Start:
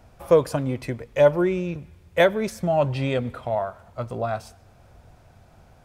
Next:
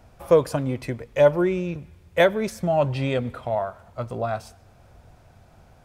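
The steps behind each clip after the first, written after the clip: no audible change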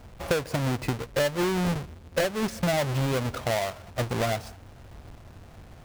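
square wave that keeps the level; treble shelf 7.9 kHz -4 dB; compression 12:1, threshold -23 dBFS, peak gain reduction 15 dB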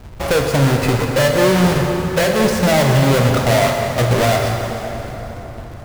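waveshaping leveller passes 3; plate-style reverb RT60 4.3 s, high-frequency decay 0.65×, DRR 1 dB; trim +1.5 dB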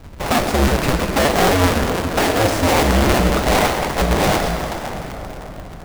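cycle switcher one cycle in 2, inverted; trim -1.5 dB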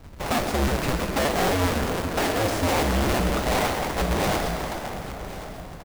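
block-companded coder 5-bit; saturation -9.5 dBFS, distortion -19 dB; delay 1084 ms -15.5 dB; trim -6 dB

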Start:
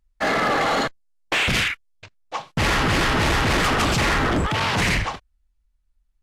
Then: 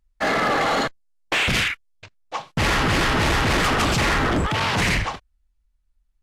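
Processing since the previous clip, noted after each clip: no audible change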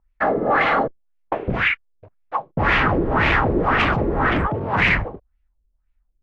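LFO low-pass sine 1.9 Hz 390–2500 Hz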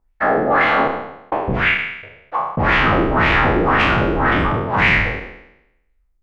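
spectral sustain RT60 0.85 s

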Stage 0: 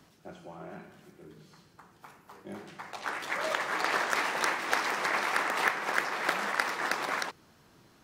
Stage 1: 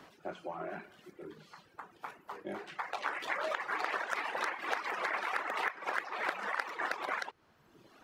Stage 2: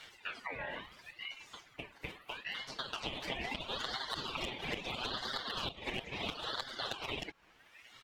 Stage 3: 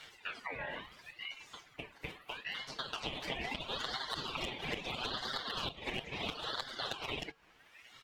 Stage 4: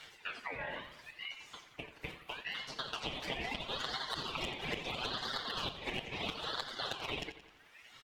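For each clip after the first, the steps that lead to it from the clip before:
reverb removal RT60 1.1 s; compression 4:1, threshold -41 dBFS, peak gain reduction 16.5 dB; tone controls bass -12 dB, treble -11 dB; trim +8 dB
comb 7.4 ms, depth 94%; compression 2.5:1, threshold -39 dBFS, peak gain reduction 9.5 dB; ring modulator with a swept carrier 1.9 kHz, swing 35%, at 0.75 Hz; trim +3 dB
feedback comb 150 Hz, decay 0.26 s, harmonics odd, mix 40%; trim +4 dB
feedback delay 87 ms, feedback 51%, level -13 dB

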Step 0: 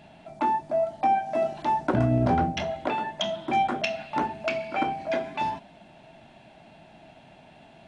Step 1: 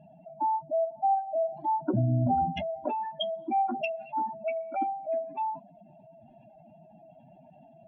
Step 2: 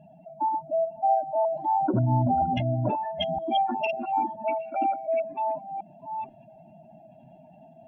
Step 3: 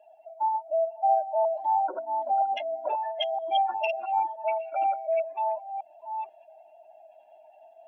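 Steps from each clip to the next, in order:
spectral contrast enhancement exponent 2.7; trim -2.5 dB
chunks repeated in reverse 484 ms, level -4 dB; trim +2 dB
steep high-pass 480 Hz 36 dB/octave

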